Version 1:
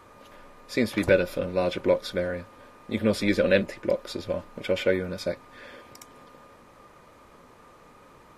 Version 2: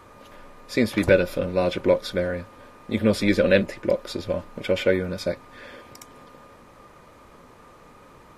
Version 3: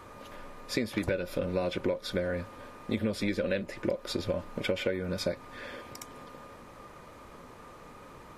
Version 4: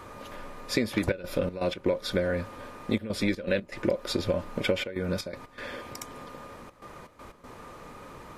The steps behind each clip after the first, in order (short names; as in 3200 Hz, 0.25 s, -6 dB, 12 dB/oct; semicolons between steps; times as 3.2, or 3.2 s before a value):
low shelf 190 Hz +3 dB; gain +2.5 dB
compressor 16:1, threshold -26 dBFS, peak gain reduction 15.5 dB
step gate "xxxxxxxxx.xx.x." 121 bpm -12 dB; gain +4 dB